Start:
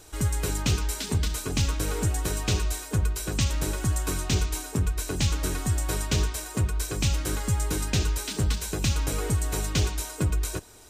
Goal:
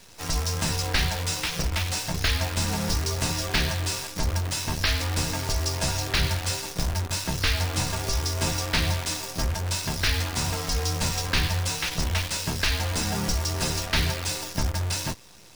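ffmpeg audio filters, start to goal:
-af "bass=f=250:g=-8,treble=f=4k:g=-1,afreqshift=-180,asetrate=30870,aresample=44100,acrusher=bits=7:dc=4:mix=0:aa=0.000001,volume=5dB"

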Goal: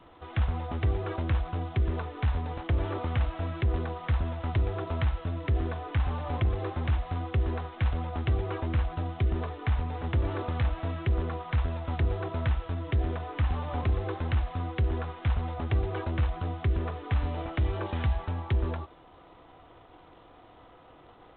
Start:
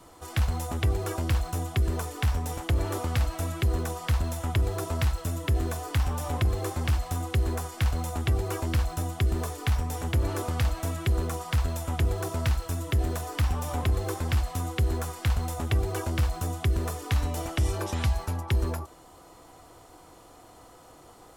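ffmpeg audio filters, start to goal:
-filter_complex "[0:a]acrossover=split=3100[a][b];[b]acompressor=threshold=-48dB:ratio=4:attack=1:release=60[c];[a][c]amix=inputs=2:normalize=0,volume=-1.5dB" -ar 8000 -c:a adpcm_g726 -b:a 24k

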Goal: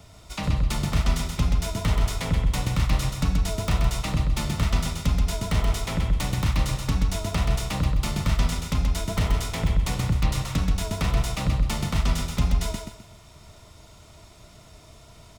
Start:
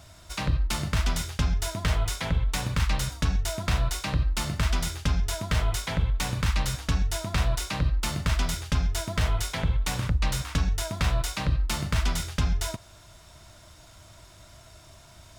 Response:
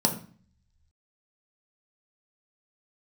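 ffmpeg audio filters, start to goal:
-filter_complex "[0:a]highshelf=f=2.8k:g=-2.5,asplit=2[a][b];[b]asetrate=29433,aresample=44100,atempo=1.49831,volume=-8dB[c];[a][c]amix=inputs=2:normalize=0,acrossover=split=170|1400|6900[d][e][f][g];[f]aeval=exprs='(mod(14.1*val(0)+1,2)-1)/14.1':c=same[h];[d][e][h][g]amix=inputs=4:normalize=0,equalizer=f=200:t=o:w=1.1:g=4,bandreject=f=1.6k:w=6.7,aecho=1:1:129|258|387|516:0.562|0.174|0.054|0.0168"

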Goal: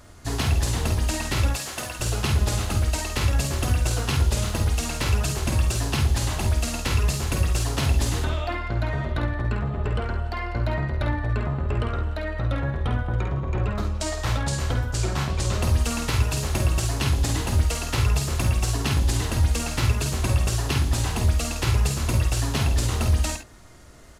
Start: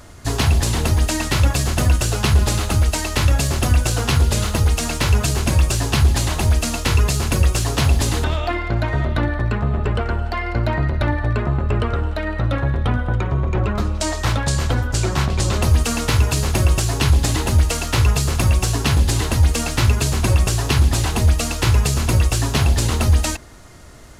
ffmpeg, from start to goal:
-filter_complex "[0:a]asettb=1/sr,asplit=3[a][b][c];[a]atrim=end=1.504[d];[b]atrim=start=1.5:end=2,asetpts=PTS-STARTPTS,afade=t=in:d=0.004:c=qsin,afade=t=out:st=0.496:d=0.004:c=qsin,highpass=f=750:p=1[e];[c]atrim=start=1.996[f];[d][e]acrossfade=d=0.004:c1=hsin:c2=qsin[g];[g][f]acrossfade=d=0.004:c1=qsin:c2=hsin,aecho=1:1:50|68:0.473|0.266,volume=-7dB"

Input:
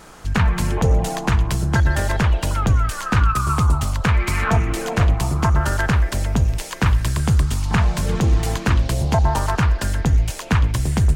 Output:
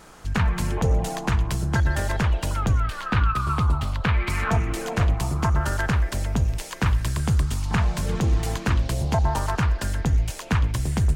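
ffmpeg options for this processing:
-filter_complex "[0:a]asettb=1/sr,asplit=3[a][b][c];[a]atrim=end=2.804[d];[b]atrim=start=2.8:end=4.3,asetpts=PTS-STARTPTS,afade=t=in:d=0.004:c=qsin,afade=t=out:st=1.496:d=0.004:c=qsin,highshelf=f=5k:t=q:w=1.5:g=-8[e];[c]atrim=start=4.296[f];[d][e]acrossfade=d=0.004:c1=hsin:c2=qsin[g];[g][f]acrossfade=d=0.004:c1=qsin:c2=hsin,volume=-4.5dB"

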